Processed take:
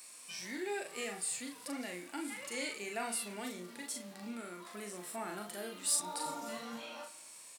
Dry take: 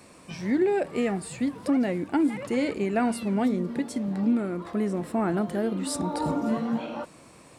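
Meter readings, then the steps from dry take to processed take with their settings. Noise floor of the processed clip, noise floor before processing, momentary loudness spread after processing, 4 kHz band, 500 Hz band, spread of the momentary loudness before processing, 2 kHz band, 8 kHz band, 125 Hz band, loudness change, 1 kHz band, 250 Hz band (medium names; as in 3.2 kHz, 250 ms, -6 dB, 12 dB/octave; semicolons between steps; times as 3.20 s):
-53 dBFS, -52 dBFS, 11 LU, -0.5 dB, -15.5 dB, 5 LU, -5.5 dB, +4.0 dB, -23.5 dB, -12.5 dB, -10.5 dB, -20.5 dB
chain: differentiator; doubling 39 ms -5 dB; in parallel at -4 dB: saturation -32 dBFS, distortion -12 dB; on the sum: spring tank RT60 1.4 s, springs 31/54/59 ms, DRR 17 dB; harmonic-percussive split percussive -8 dB; trim +3.5 dB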